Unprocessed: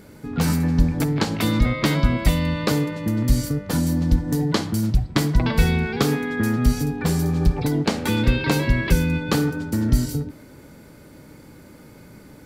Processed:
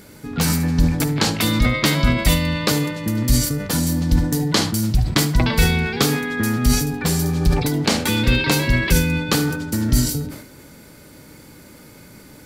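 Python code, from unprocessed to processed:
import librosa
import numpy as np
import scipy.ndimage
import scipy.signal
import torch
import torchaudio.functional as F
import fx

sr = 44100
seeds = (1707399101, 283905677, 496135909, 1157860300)

p1 = fx.high_shelf(x, sr, hz=2000.0, db=8.5)
p2 = p1 + fx.echo_single(p1, sr, ms=74, db=-16.5, dry=0)
y = fx.sustainer(p2, sr, db_per_s=75.0)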